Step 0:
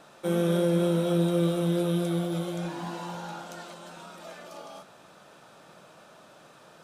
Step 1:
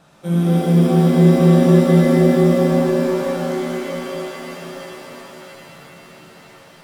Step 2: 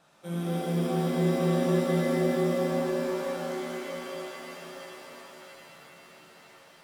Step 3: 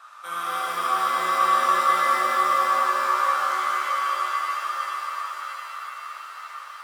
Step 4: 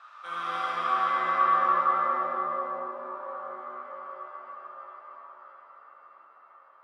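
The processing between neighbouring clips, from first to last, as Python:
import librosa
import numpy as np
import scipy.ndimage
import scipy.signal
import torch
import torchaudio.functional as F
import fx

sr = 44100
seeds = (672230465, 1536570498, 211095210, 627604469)

y1 = fx.low_shelf_res(x, sr, hz=230.0, db=7.5, q=1.5)
y1 = fx.rev_shimmer(y1, sr, seeds[0], rt60_s=3.8, semitones=7, shimmer_db=-2, drr_db=-3.5)
y1 = F.gain(torch.from_numpy(y1), -1.5).numpy()
y2 = fx.low_shelf(y1, sr, hz=260.0, db=-11.0)
y2 = F.gain(torch.from_numpy(y2), -8.0).numpy()
y3 = fx.highpass_res(y2, sr, hz=1200.0, q=9.3)
y3 = F.gain(torch.from_numpy(y3), 7.5).numpy()
y4 = fx.echo_split(y3, sr, split_hz=1400.0, low_ms=82, high_ms=620, feedback_pct=52, wet_db=-7.5)
y4 = fx.filter_sweep_lowpass(y4, sr, from_hz=3900.0, to_hz=550.0, start_s=0.63, end_s=2.94, q=0.82)
y4 = F.gain(torch.from_numpy(y4), -4.0).numpy()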